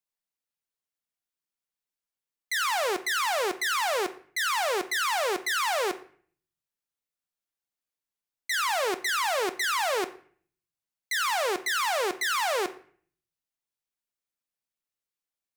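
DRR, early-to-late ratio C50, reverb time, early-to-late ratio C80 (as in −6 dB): 10.0 dB, 15.5 dB, 0.50 s, 19.5 dB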